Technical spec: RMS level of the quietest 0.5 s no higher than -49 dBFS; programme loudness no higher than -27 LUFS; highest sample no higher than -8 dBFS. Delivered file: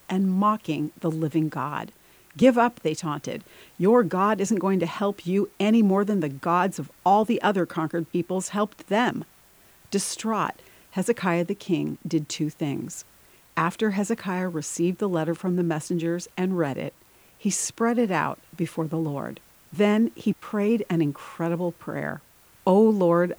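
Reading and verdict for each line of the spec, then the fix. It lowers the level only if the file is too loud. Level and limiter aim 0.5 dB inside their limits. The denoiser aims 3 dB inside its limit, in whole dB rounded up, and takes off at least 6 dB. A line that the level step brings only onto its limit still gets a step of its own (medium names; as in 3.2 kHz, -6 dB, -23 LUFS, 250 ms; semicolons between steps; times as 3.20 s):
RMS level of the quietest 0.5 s -56 dBFS: pass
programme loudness -25.0 LUFS: fail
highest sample -6.0 dBFS: fail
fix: trim -2.5 dB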